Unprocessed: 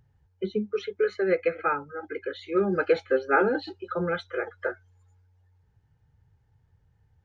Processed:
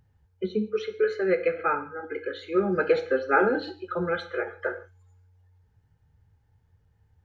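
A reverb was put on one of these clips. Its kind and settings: gated-style reverb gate 190 ms falling, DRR 8 dB

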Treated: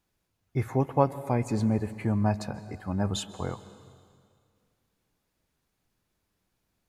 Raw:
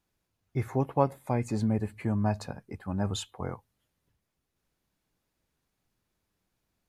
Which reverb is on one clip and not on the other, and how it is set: plate-style reverb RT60 2.2 s, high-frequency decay 0.95×, pre-delay 120 ms, DRR 14.5 dB; trim +2 dB

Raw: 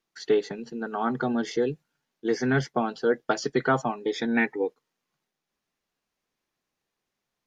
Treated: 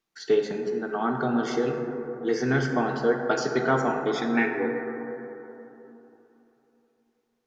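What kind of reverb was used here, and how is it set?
plate-style reverb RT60 3.3 s, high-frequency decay 0.25×, DRR 2 dB; trim -1 dB

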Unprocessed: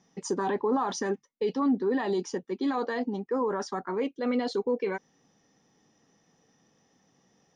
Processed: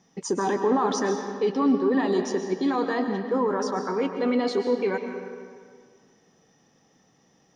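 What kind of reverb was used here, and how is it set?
algorithmic reverb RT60 1.9 s, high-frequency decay 0.7×, pre-delay 90 ms, DRR 5.5 dB; trim +3.5 dB

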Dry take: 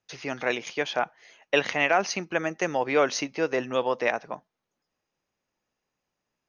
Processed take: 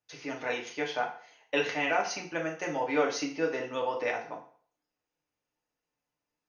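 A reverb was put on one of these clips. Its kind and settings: FDN reverb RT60 0.49 s, low-frequency decay 0.8×, high-frequency decay 0.9×, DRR -1.5 dB; trim -9 dB

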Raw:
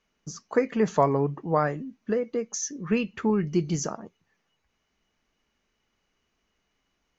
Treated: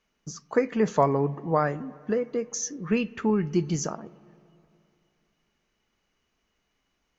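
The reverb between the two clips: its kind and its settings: spring tank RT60 2.7 s, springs 37/42/49 ms, chirp 55 ms, DRR 20 dB

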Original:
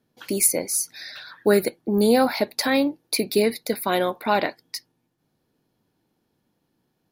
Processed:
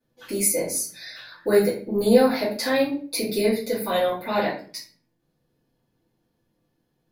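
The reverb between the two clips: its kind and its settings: simulated room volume 34 m³, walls mixed, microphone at 2 m; trim -12.5 dB

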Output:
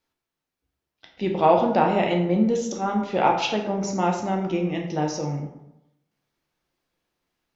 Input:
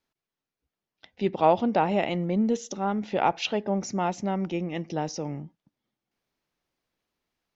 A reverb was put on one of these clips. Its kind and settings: plate-style reverb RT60 0.85 s, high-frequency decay 0.6×, DRR 1 dB; trim +1.5 dB

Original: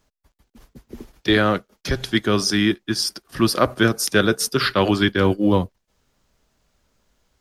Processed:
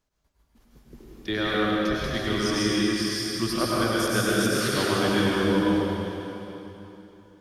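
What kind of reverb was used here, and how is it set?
plate-style reverb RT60 3.3 s, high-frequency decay 0.95×, pre-delay 85 ms, DRR -7 dB; trim -12 dB

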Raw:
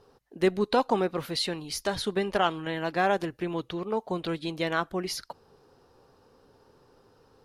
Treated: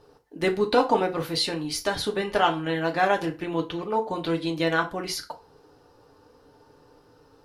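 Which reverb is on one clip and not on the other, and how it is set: FDN reverb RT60 0.31 s, low-frequency decay 0.85×, high-frequency decay 0.8×, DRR 2 dB; trim +1.5 dB

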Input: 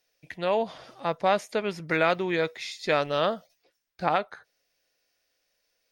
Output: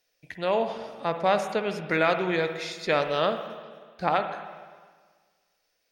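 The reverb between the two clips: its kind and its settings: spring tank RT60 1.6 s, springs 44/54/60 ms, chirp 65 ms, DRR 7.5 dB

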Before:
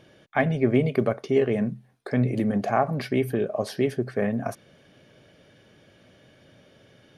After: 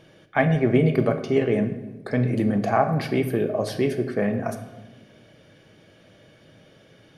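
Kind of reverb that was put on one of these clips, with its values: simulated room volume 580 m³, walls mixed, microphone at 0.63 m; trim +1.5 dB

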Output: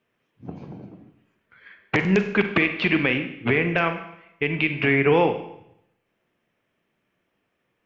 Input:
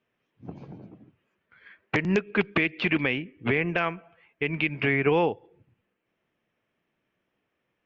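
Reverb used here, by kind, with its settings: Schroeder reverb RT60 0.77 s, combs from 32 ms, DRR 7.5 dB; trim +3.5 dB

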